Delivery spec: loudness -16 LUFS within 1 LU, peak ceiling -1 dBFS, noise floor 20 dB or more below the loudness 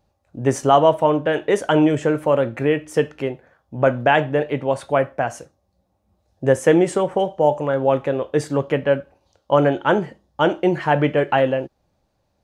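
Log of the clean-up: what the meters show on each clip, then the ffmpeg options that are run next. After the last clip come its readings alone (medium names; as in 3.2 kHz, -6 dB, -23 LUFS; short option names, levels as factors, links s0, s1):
loudness -19.5 LUFS; peak level -2.5 dBFS; loudness target -16.0 LUFS
-> -af "volume=1.5,alimiter=limit=0.891:level=0:latency=1"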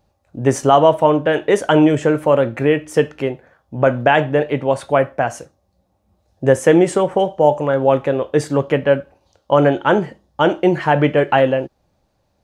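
loudness -16.5 LUFS; peak level -1.0 dBFS; noise floor -66 dBFS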